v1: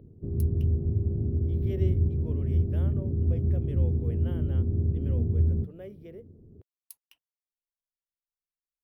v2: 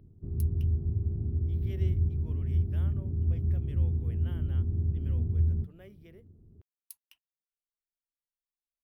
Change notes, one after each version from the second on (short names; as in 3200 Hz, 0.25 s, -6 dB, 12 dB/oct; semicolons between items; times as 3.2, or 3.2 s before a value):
master: add graphic EQ 125/250/500 Hz -4/-5/-12 dB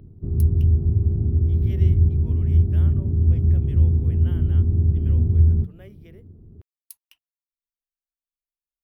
speech +5.0 dB; background +10.5 dB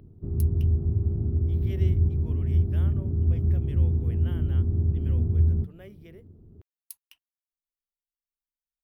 background: add low shelf 310 Hz -6 dB